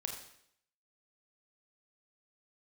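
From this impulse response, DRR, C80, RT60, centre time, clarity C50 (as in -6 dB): 2.0 dB, 7.5 dB, 0.70 s, 30 ms, 5.5 dB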